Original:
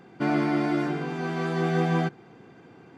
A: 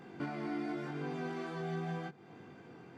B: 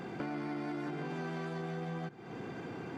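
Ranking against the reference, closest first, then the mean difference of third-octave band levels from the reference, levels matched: A, B; 4.5 dB, 7.0 dB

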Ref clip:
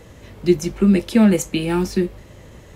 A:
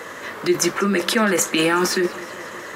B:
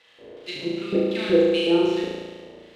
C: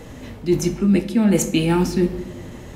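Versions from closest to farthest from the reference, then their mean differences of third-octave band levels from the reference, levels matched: C, B, A; 5.0 dB, 8.0 dB, 11.0 dB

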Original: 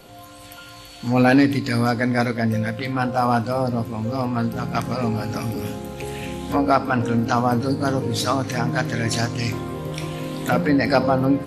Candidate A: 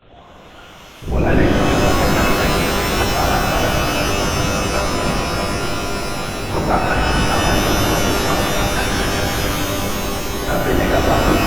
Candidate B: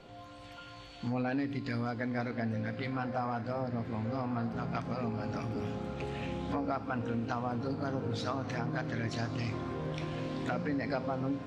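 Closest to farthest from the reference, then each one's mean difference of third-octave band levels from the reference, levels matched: B, A; 4.5 dB, 10.0 dB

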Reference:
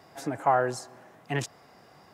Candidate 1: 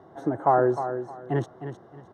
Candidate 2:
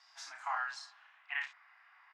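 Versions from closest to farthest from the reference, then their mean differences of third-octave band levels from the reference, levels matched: 1, 2; 7.0 dB, 12.5 dB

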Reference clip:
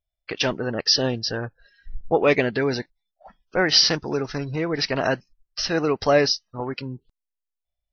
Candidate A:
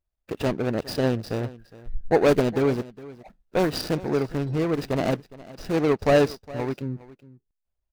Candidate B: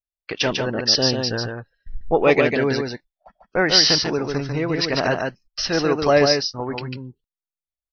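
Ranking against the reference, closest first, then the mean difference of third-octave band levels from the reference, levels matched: B, A; 4.5 dB, 7.5 dB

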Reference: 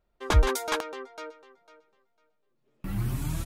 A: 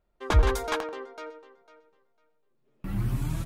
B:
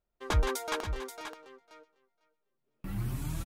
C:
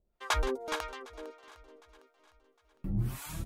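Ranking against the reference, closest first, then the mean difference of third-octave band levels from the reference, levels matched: A, B, C; 2.5 dB, 4.0 dB, 6.0 dB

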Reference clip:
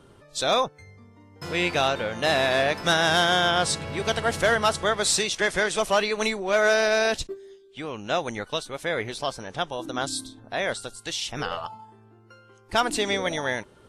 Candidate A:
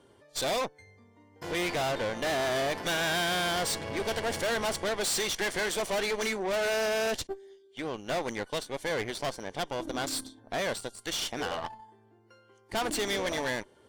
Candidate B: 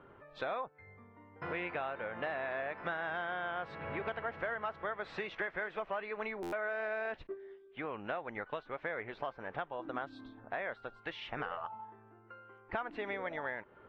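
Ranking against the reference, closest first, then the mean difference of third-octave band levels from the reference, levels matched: A, B; 4.5 dB, 8.0 dB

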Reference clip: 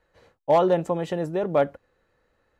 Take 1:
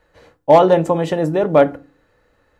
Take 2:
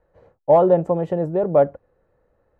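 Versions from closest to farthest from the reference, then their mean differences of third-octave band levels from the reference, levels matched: 1, 2; 1.5 dB, 4.5 dB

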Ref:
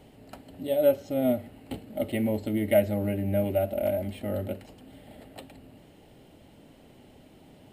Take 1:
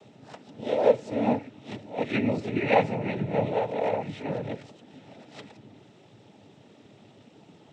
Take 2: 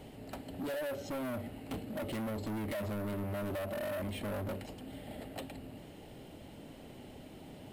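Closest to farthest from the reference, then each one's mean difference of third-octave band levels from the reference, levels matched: 1, 2; 6.0 dB, 11.0 dB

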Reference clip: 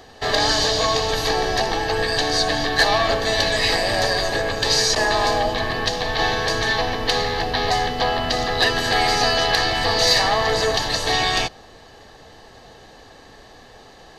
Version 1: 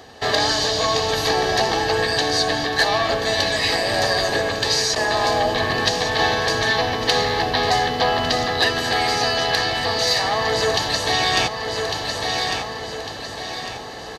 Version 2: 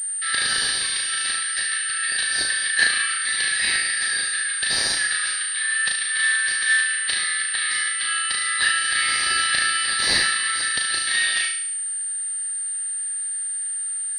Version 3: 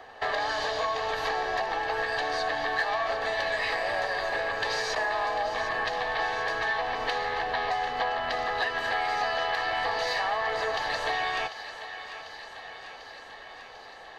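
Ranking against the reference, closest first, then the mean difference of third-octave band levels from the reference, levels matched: 1, 3, 2; 4.0 dB, 7.0 dB, 14.0 dB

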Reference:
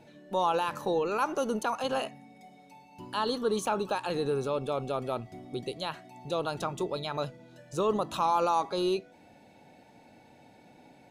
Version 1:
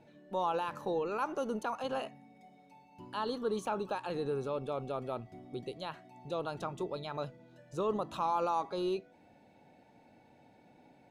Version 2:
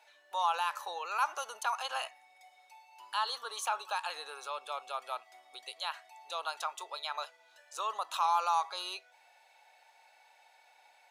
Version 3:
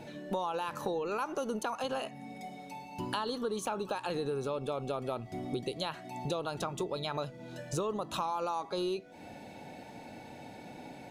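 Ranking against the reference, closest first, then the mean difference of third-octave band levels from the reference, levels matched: 1, 3, 2; 2.0 dB, 6.0 dB, 11.0 dB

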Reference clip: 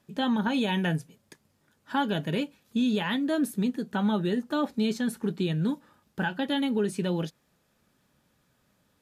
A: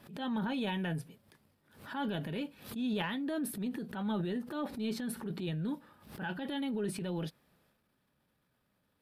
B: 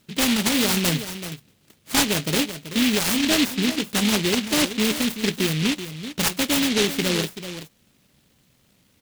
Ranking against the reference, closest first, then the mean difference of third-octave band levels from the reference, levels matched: A, B; 4.0 dB, 13.0 dB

